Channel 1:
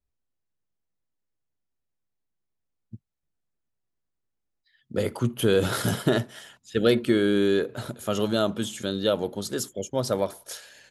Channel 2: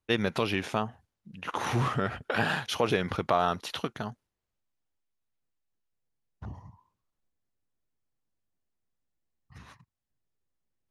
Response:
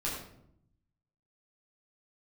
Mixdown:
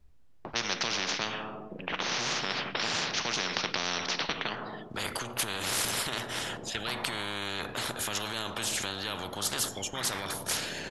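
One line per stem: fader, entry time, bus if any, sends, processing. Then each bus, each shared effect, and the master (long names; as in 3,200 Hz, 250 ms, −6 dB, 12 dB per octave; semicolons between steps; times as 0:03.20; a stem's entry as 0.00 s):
−9.0 dB, 0.00 s, send −21.5 dB, low-pass filter 3,700 Hz 6 dB per octave; low-shelf EQ 210 Hz +6.5 dB; brickwall limiter −20.5 dBFS, peak gain reduction 13.5 dB
0.0 dB, 0.45 s, send −15.5 dB, low-pass that shuts in the quiet parts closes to 500 Hz, open at −23.5 dBFS; Chebyshev band-pass filter 170–5,700 Hz, order 4; upward compression, threshold −34 dBFS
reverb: on, RT60 0.70 s, pre-delay 8 ms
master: every bin compressed towards the loudest bin 10 to 1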